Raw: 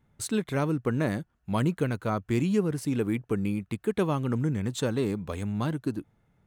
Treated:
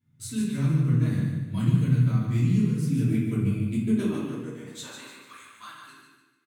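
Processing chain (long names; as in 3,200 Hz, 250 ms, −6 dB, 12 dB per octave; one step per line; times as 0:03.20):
guitar amp tone stack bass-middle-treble 6-0-2
0:03.01–0:04.01: transient designer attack +6 dB, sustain −10 dB
high-pass filter sweep 140 Hz → 1,200 Hz, 0:03.52–0:05.16
repeating echo 147 ms, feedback 38%, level −6 dB
rectangular room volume 180 cubic metres, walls mixed, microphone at 2.9 metres
level +3.5 dB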